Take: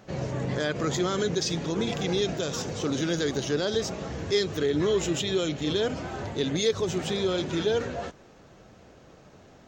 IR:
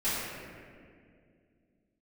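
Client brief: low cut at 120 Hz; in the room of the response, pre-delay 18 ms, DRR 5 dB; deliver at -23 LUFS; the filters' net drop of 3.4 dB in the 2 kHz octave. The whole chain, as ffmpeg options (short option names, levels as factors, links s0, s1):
-filter_complex "[0:a]highpass=120,equalizer=f=2000:t=o:g=-4.5,asplit=2[s0][s1];[1:a]atrim=start_sample=2205,adelay=18[s2];[s1][s2]afir=irnorm=-1:irlink=0,volume=0.178[s3];[s0][s3]amix=inputs=2:normalize=0,volume=1.58"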